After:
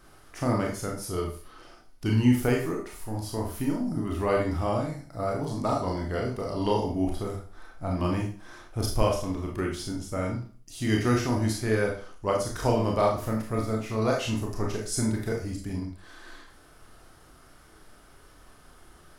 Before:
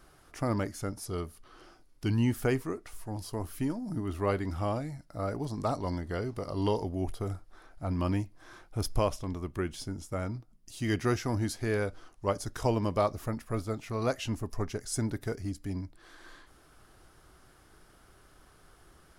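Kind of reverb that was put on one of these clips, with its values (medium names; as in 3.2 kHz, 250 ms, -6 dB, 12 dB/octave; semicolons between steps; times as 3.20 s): Schroeder reverb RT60 0.4 s, combs from 25 ms, DRR -1 dB; trim +1.5 dB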